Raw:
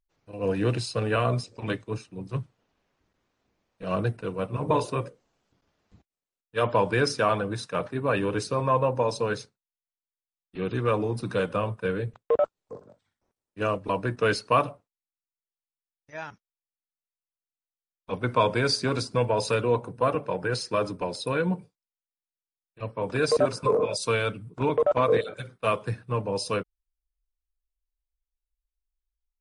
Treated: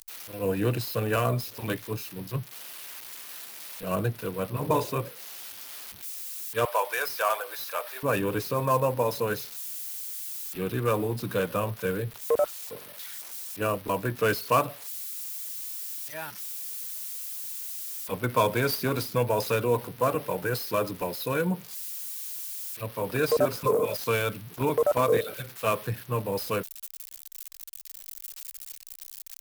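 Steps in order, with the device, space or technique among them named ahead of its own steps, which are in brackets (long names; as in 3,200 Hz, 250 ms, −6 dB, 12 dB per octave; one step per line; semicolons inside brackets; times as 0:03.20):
0:06.65–0:08.03: inverse Chebyshev high-pass filter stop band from 170 Hz, stop band 60 dB
budget class-D amplifier (gap after every zero crossing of 0.059 ms; spike at every zero crossing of −25.5 dBFS)
level −1 dB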